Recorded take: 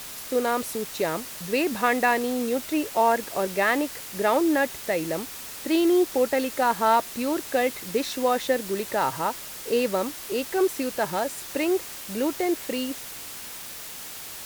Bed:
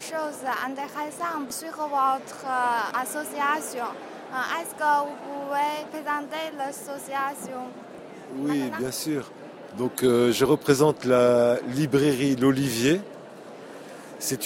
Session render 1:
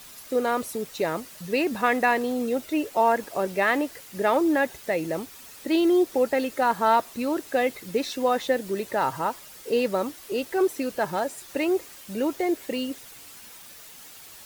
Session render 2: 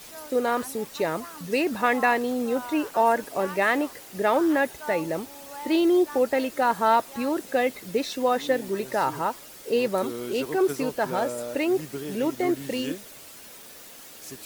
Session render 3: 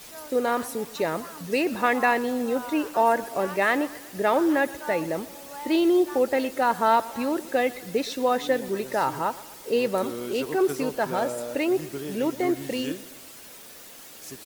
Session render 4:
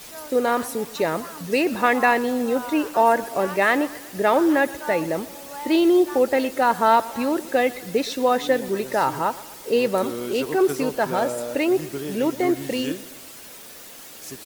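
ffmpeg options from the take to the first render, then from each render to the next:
-af "afftdn=nr=9:nf=-39"
-filter_complex "[1:a]volume=-14dB[a];[0:a][a]amix=inputs=2:normalize=0"
-af "aecho=1:1:121|242|363|484|605:0.112|0.0617|0.0339|0.0187|0.0103"
-af "volume=3.5dB"

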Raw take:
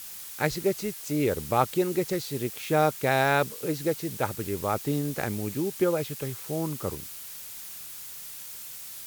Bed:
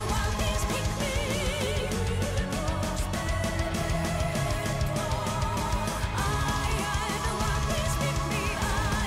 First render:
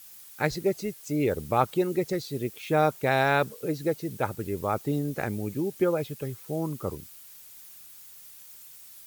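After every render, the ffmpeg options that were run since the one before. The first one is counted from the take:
-af "afftdn=nr=10:nf=-41"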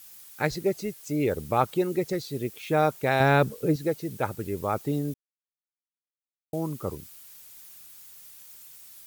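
-filter_complex "[0:a]asettb=1/sr,asplit=3[a][b][c];[a]atrim=end=3.204[d];[b]atrim=start=3.2:end=3.76,asetpts=PTS-STARTPTS,afade=t=in:d=0.004:c=qsin,afade=t=out:st=0.556:d=0.004:c=qsin,lowshelf=f=370:g=9.5[e];[c]atrim=start=3.756[f];[d][e]acrossfade=d=0.004:c1=hsin:c2=qsin[g];[g][f]acrossfade=d=0.004:c1=qsin:c2=hsin,asplit=3[h][i][j];[h]atrim=end=5.14,asetpts=PTS-STARTPTS,afade=t=out:st=5.136:d=0.004:c=hsin[k];[i]atrim=start=5.14:end=6.53,asetpts=PTS-STARTPTS,volume=0[l];[j]atrim=start=6.53,asetpts=PTS-STARTPTS,afade=t=in:d=0.004:c=hsin[m];[k][l][m]concat=n=3:v=0:a=1"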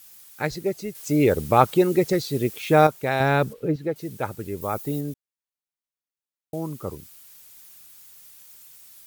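-filter_complex "[0:a]asettb=1/sr,asplit=3[a][b][c];[a]atrim=end=3.534[d];[b]atrim=start=3.53:end=3.96,asetpts=PTS-STARTPTS,afade=t=in:d=0.004:c=qsin,afade=t=out:st=0.426:d=0.004:c=qsin,acrossover=split=3500[e][f];[f]acompressor=threshold=-59dB:ratio=4:attack=1:release=60[g];[e][g]amix=inputs=2:normalize=0[h];[c]atrim=start=3.956[i];[d][h]acrossfade=d=0.004:c1=hsin:c2=qsin[j];[j][i]acrossfade=d=0.004:c1=qsin:c2=hsin,asettb=1/sr,asplit=3[k][l][m];[k]atrim=end=4.614[n];[l]atrim=start=4.61:end=5.01,asetpts=PTS-STARTPTS,afade=t=in:d=0.004:c=qsin,afade=t=out:st=0.396:d=0.004:c=qsin,highshelf=f=10k:g=11[o];[m]atrim=start=5.006[p];[n][o]acrossfade=d=0.004:c1=hsin:c2=qsin[q];[q][p]acrossfade=d=0.004:c1=qsin:c2=hsin,asplit=3[r][s][t];[r]atrim=end=0.952[u];[s]atrim=start=0.948:end=2.872,asetpts=PTS-STARTPTS,volume=7dB[v];[t]atrim=start=2.868[w];[u][v]acrossfade=d=0.004:c1=hsin:c2=hsin[x];[x][w]acrossfade=d=0.004:c1=hsin:c2=hsin"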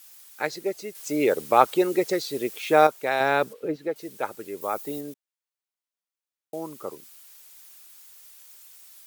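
-af "highpass=370,equalizer=f=14k:w=0.92:g=-2.5"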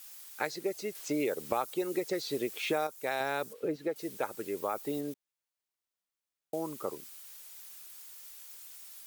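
-filter_complex "[0:a]acrossover=split=5300[a][b];[a]acompressor=threshold=-29dB:ratio=6[c];[b]alimiter=level_in=13dB:limit=-24dB:level=0:latency=1:release=206,volume=-13dB[d];[c][d]amix=inputs=2:normalize=0"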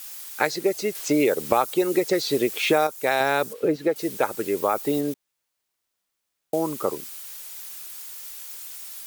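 -af "volume=11dB"

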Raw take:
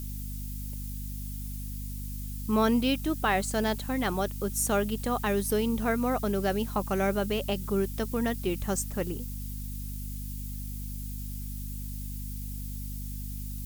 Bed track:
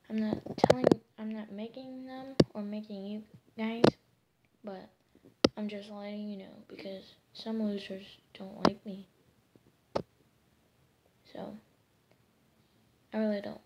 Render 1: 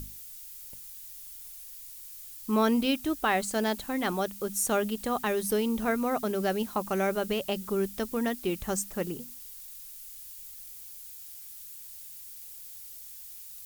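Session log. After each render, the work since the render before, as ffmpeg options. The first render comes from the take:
-af "bandreject=f=50:t=h:w=6,bandreject=f=100:t=h:w=6,bandreject=f=150:t=h:w=6,bandreject=f=200:t=h:w=6,bandreject=f=250:t=h:w=6"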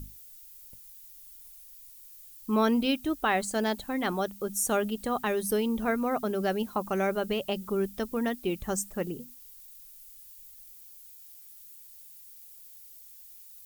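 -af "afftdn=nr=8:nf=-46"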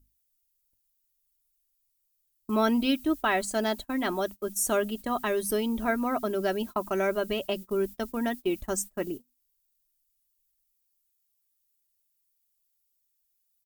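-af "agate=range=-26dB:threshold=-36dB:ratio=16:detection=peak,aecho=1:1:3.1:0.5"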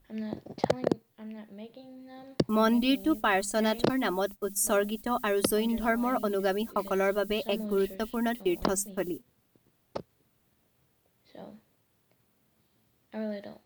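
-filter_complex "[1:a]volume=-3.5dB[a];[0:a][a]amix=inputs=2:normalize=0"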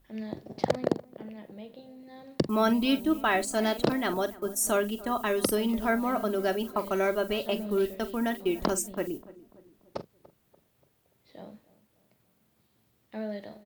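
-filter_complex "[0:a]asplit=2[a][b];[b]adelay=44,volume=-13dB[c];[a][c]amix=inputs=2:normalize=0,asplit=2[d][e];[e]adelay=290,lowpass=f=1.2k:p=1,volume=-18.5dB,asplit=2[f][g];[g]adelay=290,lowpass=f=1.2k:p=1,volume=0.51,asplit=2[h][i];[i]adelay=290,lowpass=f=1.2k:p=1,volume=0.51,asplit=2[j][k];[k]adelay=290,lowpass=f=1.2k:p=1,volume=0.51[l];[d][f][h][j][l]amix=inputs=5:normalize=0"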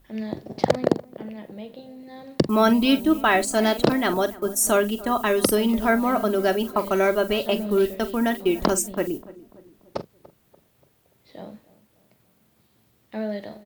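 -af "volume=6.5dB"

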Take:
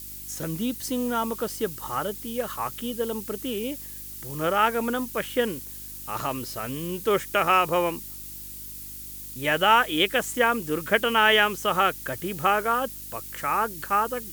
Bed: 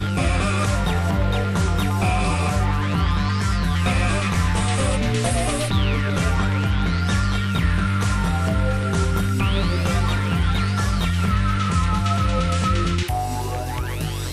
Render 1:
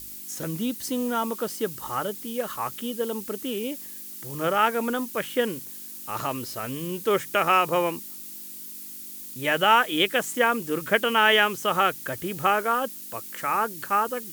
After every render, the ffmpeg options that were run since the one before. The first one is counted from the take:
-af "bandreject=f=50:t=h:w=4,bandreject=f=100:t=h:w=4,bandreject=f=150:t=h:w=4"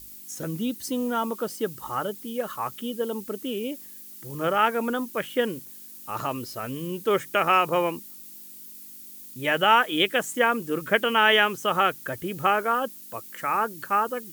-af "afftdn=nr=6:nf=-40"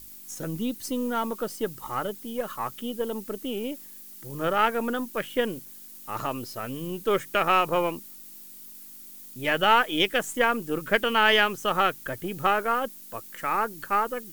-af "aeval=exprs='if(lt(val(0),0),0.708*val(0),val(0))':c=same"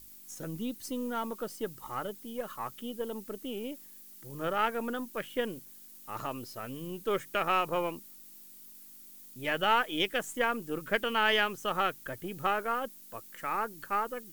-af "volume=-6.5dB"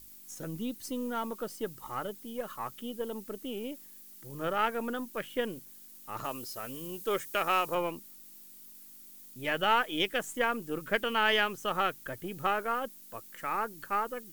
-filter_complex "[0:a]asettb=1/sr,asplit=3[a][b][c];[a]atrim=end=6.244[d];[b]atrim=start=6.24:end=7.75,asetpts=PTS-STARTPTS,afade=t=in:d=0.004:c=qsin,afade=t=out:st=1.506:d=0.004:c=qsin,bass=f=250:g=-5,treble=f=4k:g=6[e];[c]atrim=start=7.746[f];[d][e]acrossfade=d=0.004:c1=hsin:c2=qsin[g];[g][f]acrossfade=d=0.004:c1=qsin:c2=hsin"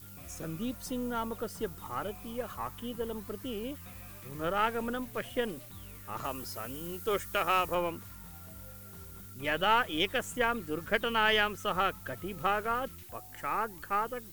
-filter_complex "[1:a]volume=-30dB[a];[0:a][a]amix=inputs=2:normalize=0"

